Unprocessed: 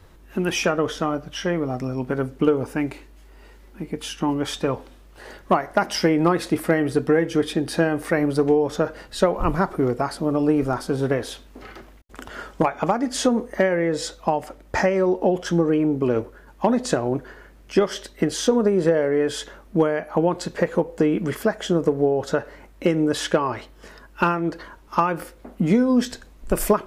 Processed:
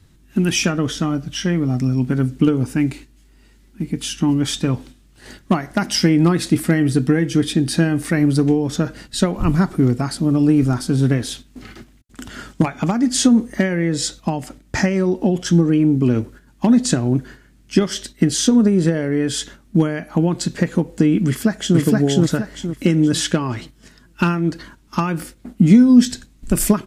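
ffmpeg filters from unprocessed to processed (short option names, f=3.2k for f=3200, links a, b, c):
-filter_complex "[0:a]asplit=2[a][b];[b]afade=t=in:st=21.27:d=0.01,afade=t=out:st=21.79:d=0.01,aecho=0:1:470|940|1410|1880|2350:0.944061|0.330421|0.115647|0.0404766|0.0141668[c];[a][c]amix=inputs=2:normalize=0,agate=range=-7dB:threshold=-41dB:ratio=16:detection=peak,equalizer=f=125:t=o:w=1:g=8,equalizer=f=250:t=o:w=1:g=7,equalizer=f=500:t=o:w=1:g=-9,equalizer=f=1k:t=o:w=1:g=-6,equalizer=f=4k:t=o:w=1:g=3,equalizer=f=8k:t=o:w=1:g=7,volume=2.5dB"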